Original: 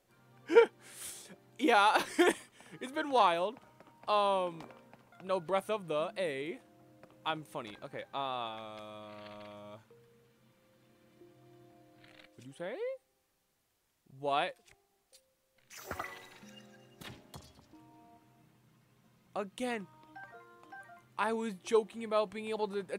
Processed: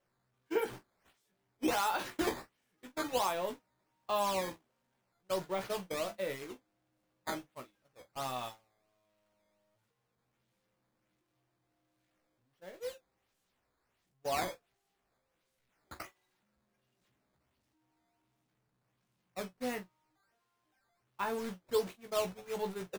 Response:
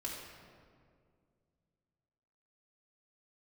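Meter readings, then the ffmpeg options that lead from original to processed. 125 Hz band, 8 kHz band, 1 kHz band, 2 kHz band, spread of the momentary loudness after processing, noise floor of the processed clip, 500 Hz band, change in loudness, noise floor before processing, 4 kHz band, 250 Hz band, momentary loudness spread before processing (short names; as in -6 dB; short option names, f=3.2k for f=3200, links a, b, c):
-1.5 dB, +2.0 dB, -5.0 dB, -5.5 dB, 19 LU, -81 dBFS, -5.0 dB, -3.5 dB, -76 dBFS, -3.0 dB, -3.5 dB, 23 LU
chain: -filter_complex "[0:a]aeval=exprs='val(0)+0.5*0.0158*sgn(val(0))':c=same,agate=range=-34dB:threshold=-34dB:ratio=16:detection=peak,alimiter=limit=-17dB:level=0:latency=1:release=145,acrusher=samples=9:mix=1:aa=0.000001:lfo=1:lforange=14.4:lforate=1.4,asplit=2[a][b];[b]aecho=0:1:16|44:0.501|0.2[c];[a][c]amix=inputs=2:normalize=0,volume=-5.5dB"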